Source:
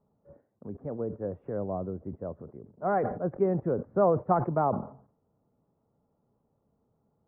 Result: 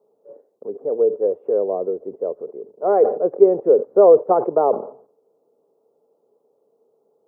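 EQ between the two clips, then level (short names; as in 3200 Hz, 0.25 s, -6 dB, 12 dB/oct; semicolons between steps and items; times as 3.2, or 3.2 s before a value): resonant high-pass 440 Hz, resonance Q 4.9; bell 1800 Hz -12 dB 0.96 oct; +5.5 dB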